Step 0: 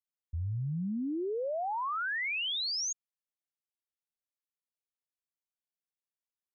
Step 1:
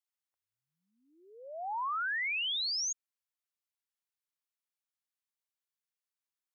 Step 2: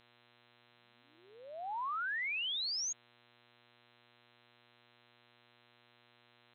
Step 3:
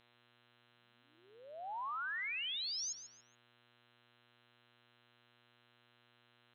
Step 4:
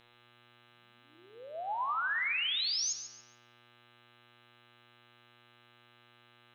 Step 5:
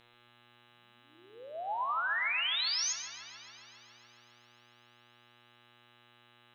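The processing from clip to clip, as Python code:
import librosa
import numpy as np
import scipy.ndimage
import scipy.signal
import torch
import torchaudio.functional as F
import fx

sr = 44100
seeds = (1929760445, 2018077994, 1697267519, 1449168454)

y1 = scipy.signal.sosfilt(scipy.signal.butter(4, 810.0, 'highpass', fs=sr, output='sos'), x)
y2 = fx.dmg_buzz(y1, sr, base_hz=120.0, harmonics=34, level_db=-64.0, tilt_db=-1, odd_only=False)
y2 = y2 * 10.0 ** (-3.5 / 20.0)
y3 = fx.echo_feedback(y2, sr, ms=141, feedback_pct=29, wet_db=-12.0)
y3 = y3 * 10.0 ** (-3.5 / 20.0)
y4 = fx.room_shoebox(y3, sr, seeds[0], volume_m3=1400.0, walls='mixed', distance_m=0.73)
y4 = y4 * 10.0 ** (7.0 / 20.0)
y5 = fx.echo_wet_lowpass(y4, sr, ms=138, feedback_pct=77, hz=3700.0, wet_db=-12.0)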